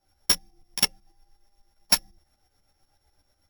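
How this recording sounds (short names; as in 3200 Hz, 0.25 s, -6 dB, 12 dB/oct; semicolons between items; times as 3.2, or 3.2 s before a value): a buzz of ramps at a fixed pitch in blocks of 8 samples; tremolo saw up 8.1 Hz, depth 70%; a shimmering, thickened sound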